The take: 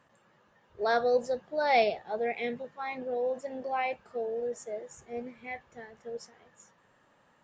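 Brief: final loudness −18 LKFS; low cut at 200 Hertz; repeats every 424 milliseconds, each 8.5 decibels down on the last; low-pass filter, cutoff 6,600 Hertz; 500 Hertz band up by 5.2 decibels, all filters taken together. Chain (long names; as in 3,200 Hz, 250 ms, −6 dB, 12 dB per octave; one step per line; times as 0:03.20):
high-pass filter 200 Hz
low-pass filter 6,600 Hz
parametric band 500 Hz +6 dB
repeating echo 424 ms, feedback 38%, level −8.5 dB
level +9 dB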